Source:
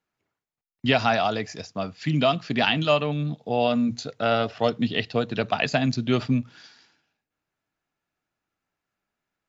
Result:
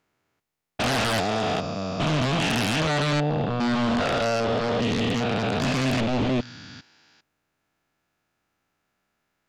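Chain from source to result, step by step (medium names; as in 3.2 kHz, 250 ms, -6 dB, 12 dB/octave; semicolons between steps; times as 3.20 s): spectrogram pixelated in time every 400 ms; sine folder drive 14 dB, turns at -11.5 dBFS; trim -8.5 dB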